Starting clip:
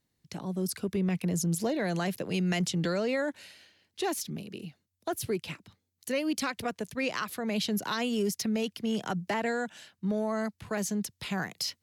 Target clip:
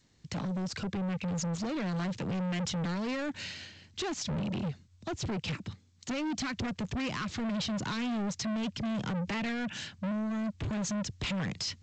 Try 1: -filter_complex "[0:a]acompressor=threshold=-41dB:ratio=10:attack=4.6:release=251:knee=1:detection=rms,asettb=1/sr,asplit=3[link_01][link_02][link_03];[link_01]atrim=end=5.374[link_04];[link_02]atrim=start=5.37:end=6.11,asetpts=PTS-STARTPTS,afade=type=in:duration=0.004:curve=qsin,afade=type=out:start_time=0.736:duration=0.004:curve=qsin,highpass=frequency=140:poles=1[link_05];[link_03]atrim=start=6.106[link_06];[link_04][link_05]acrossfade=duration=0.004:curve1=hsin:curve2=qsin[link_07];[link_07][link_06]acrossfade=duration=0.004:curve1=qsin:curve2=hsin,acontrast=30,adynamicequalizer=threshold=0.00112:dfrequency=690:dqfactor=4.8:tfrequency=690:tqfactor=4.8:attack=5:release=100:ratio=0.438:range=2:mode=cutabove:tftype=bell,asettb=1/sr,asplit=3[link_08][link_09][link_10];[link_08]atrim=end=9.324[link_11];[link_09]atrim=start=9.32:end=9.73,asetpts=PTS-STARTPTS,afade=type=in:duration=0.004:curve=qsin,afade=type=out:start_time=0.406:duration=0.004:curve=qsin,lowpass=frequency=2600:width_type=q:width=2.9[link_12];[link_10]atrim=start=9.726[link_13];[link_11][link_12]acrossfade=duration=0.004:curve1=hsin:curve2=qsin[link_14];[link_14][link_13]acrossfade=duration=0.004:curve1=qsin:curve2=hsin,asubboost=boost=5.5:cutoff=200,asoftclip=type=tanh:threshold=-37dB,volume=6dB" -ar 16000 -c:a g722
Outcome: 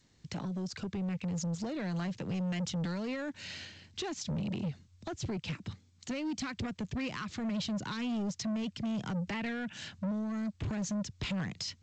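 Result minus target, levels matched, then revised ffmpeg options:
downward compressor: peak gain reduction +7.5 dB
-filter_complex "[0:a]acompressor=threshold=-32.5dB:ratio=10:attack=4.6:release=251:knee=1:detection=rms,asettb=1/sr,asplit=3[link_01][link_02][link_03];[link_01]atrim=end=5.374[link_04];[link_02]atrim=start=5.37:end=6.11,asetpts=PTS-STARTPTS,afade=type=in:duration=0.004:curve=qsin,afade=type=out:start_time=0.736:duration=0.004:curve=qsin,highpass=frequency=140:poles=1[link_05];[link_03]atrim=start=6.106[link_06];[link_04][link_05]acrossfade=duration=0.004:curve1=hsin:curve2=qsin[link_07];[link_07][link_06]acrossfade=duration=0.004:curve1=qsin:curve2=hsin,acontrast=30,adynamicequalizer=threshold=0.00112:dfrequency=690:dqfactor=4.8:tfrequency=690:tqfactor=4.8:attack=5:release=100:ratio=0.438:range=2:mode=cutabove:tftype=bell,asettb=1/sr,asplit=3[link_08][link_09][link_10];[link_08]atrim=end=9.324[link_11];[link_09]atrim=start=9.32:end=9.73,asetpts=PTS-STARTPTS,afade=type=in:duration=0.004:curve=qsin,afade=type=out:start_time=0.406:duration=0.004:curve=qsin,lowpass=frequency=2600:width_type=q:width=2.9[link_12];[link_10]atrim=start=9.726[link_13];[link_11][link_12]acrossfade=duration=0.004:curve1=hsin:curve2=qsin[link_14];[link_14][link_13]acrossfade=duration=0.004:curve1=qsin:curve2=hsin,asubboost=boost=5.5:cutoff=200,asoftclip=type=tanh:threshold=-37dB,volume=6dB" -ar 16000 -c:a g722

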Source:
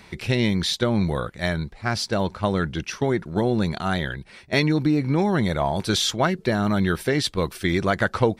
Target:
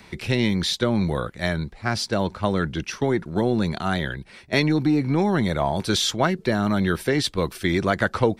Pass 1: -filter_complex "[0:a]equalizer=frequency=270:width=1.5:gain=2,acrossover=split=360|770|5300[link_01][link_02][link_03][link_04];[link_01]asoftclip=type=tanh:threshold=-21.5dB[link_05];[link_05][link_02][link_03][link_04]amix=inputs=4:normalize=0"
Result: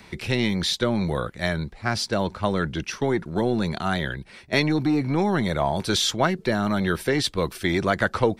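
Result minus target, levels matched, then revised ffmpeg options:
soft clipping: distortion +8 dB
-filter_complex "[0:a]equalizer=frequency=270:width=1.5:gain=2,acrossover=split=360|770|5300[link_01][link_02][link_03][link_04];[link_01]asoftclip=type=tanh:threshold=-15dB[link_05];[link_05][link_02][link_03][link_04]amix=inputs=4:normalize=0"

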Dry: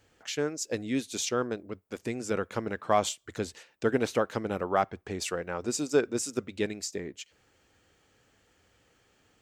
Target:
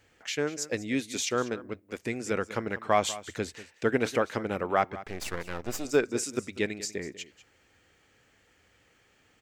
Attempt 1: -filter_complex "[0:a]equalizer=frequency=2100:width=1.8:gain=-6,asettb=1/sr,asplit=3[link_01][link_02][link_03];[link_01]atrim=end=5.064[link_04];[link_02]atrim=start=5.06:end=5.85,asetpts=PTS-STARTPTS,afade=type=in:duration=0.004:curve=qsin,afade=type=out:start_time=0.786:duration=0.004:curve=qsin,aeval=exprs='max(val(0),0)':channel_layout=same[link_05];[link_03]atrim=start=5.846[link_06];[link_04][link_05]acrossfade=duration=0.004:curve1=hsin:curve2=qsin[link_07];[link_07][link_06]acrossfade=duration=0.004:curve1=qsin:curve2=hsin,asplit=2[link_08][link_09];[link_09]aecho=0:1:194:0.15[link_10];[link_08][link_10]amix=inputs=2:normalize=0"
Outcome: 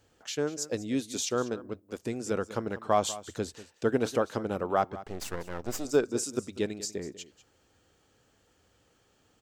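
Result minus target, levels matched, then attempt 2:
2,000 Hz band −6.0 dB
-filter_complex "[0:a]equalizer=frequency=2100:width=1.8:gain=6,asettb=1/sr,asplit=3[link_01][link_02][link_03];[link_01]atrim=end=5.064[link_04];[link_02]atrim=start=5.06:end=5.85,asetpts=PTS-STARTPTS,afade=type=in:duration=0.004:curve=qsin,afade=type=out:start_time=0.786:duration=0.004:curve=qsin,aeval=exprs='max(val(0),0)':channel_layout=same[link_05];[link_03]atrim=start=5.846[link_06];[link_04][link_05]acrossfade=duration=0.004:curve1=hsin:curve2=qsin[link_07];[link_07][link_06]acrossfade=duration=0.004:curve1=qsin:curve2=hsin,asplit=2[link_08][link_09];[link_09]aecho=0:1:194:0.15[link_10];[link_08][link_10]amix=inputs=2:normalize=0"

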